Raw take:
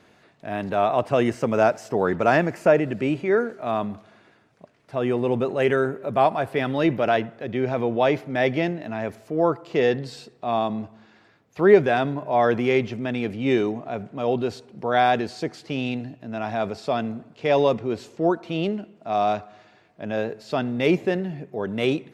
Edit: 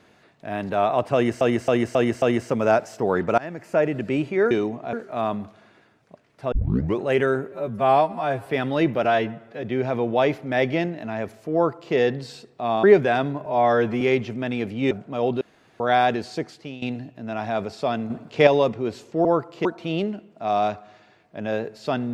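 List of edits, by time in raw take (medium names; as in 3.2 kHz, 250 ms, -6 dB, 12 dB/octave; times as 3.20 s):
1.14–1.41 s: loop, 5 plays
2.30–2.93 s: fade in, from -23 dB
5.02 s: tape start 0.49 s
6.02–6.49 s: stretch 2×
7.07–7.46 s: stretch 1.5×
9.38–9.78 s: copy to 18.30 s
10.67–11.65 s: delete
12.27–12.64 s: stretch 1.5×
13.54–13.96 s: move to 3.43 s
14.46–14.85 s: room tone
15.45–15.87 s: fade out, to -15.5 dB
17.15–17.52 s: gain +7 dB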